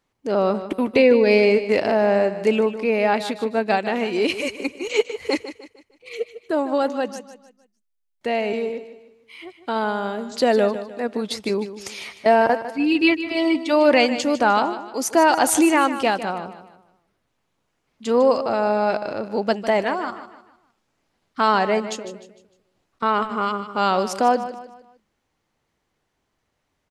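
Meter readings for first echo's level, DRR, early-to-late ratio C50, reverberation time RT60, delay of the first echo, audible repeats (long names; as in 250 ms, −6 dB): −12.5 dB, no reverb audible, no reverb audible, no reverb audible, 152 ms, 3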